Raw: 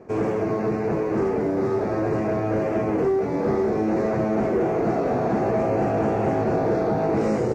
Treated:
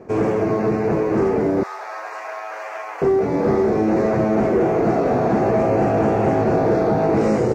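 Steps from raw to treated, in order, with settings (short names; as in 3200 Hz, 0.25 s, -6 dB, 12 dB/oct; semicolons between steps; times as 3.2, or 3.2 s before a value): 1.63–3.02 HPF 860 Hz 24 dB/oct; gain +4.5 dB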